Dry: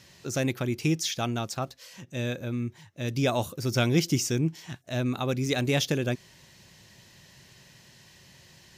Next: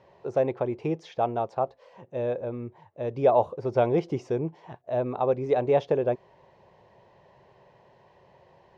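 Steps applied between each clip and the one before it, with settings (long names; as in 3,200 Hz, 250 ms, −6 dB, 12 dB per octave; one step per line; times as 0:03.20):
low-pass filter 2,000 Hz 12 dB per octave
flat-topped bell 640 Hz +15 dB
level −6.5 dB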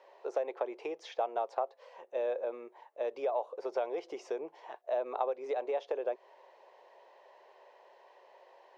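downward compressor 16 to 1, threshold −27 dBFS, peak gain reduction 13.5 dB
high-pass filter 450 Hz 24 dB per octave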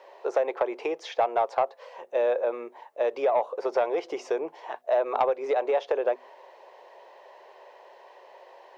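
mains-hum notches 50/100/150/200/250 Hz
dynamic equaliser 1,400 Hz, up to +4 dB, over −49 dBFS, Q 0.77
soft clipping −21.5 dBFS, distortion −20 dB
level +8.5 dB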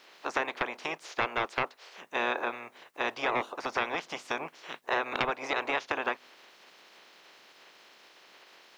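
ceiling on every frequency bin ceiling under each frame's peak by 29 dB
level −5.5 dB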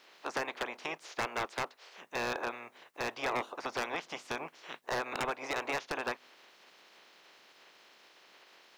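wave folding −21.5 dBFS
level −3.5 dB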